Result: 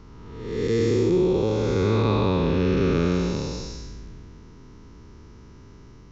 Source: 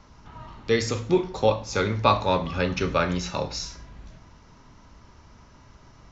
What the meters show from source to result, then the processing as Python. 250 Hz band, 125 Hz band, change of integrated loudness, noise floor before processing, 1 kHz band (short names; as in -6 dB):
+6.0 dB, +5.5 dB, +2.0 dB, -53 dBFS, -6.5 dB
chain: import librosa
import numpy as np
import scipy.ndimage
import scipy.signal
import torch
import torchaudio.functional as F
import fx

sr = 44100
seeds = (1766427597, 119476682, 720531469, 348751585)

y = fx.spec_blur(x, sr, span_ms=396.0)
y = fx.low_shelf_res(y, sr, hz=510.0, db=6.0, q=3.0)
y = F.gain(torch.from_numpy(y), 1.0).numpy()